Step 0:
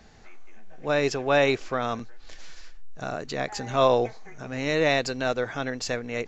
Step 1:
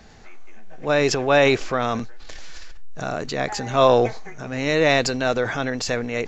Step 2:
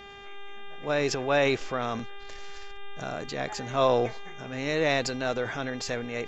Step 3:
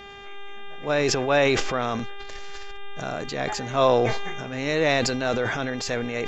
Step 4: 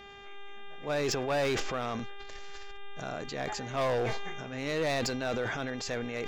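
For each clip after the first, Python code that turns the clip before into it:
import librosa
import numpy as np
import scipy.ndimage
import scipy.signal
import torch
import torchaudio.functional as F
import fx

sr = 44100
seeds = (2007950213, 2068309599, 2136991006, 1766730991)

y1 = fx.transient(x, sr, attack_db=0, sustain_db=6)
y1 = y1 * librosa.db_to_amplitude(4.5)
y2 = fx.dmg_buzz(y1, sr, base_hz=400.0, harmonics=9, level_db=-39.0, tilt_db=-2, odd_only=False)
y2 = y2 * librosa.db_to_amplitude(-7.5)
y3 = fx.sustainer(y2, sr, db_per_s=31.0)
y3 = y3 * librosa.db_to_amplitude(3.5)
y4 = np.clip(10.0 ** (18.0 / 20.0) * y3, -1.0, 1.0) / 10.0 ** (18.0 / 20.0)
y4 = y4 * librosa.db_to_amplitude(-7.0)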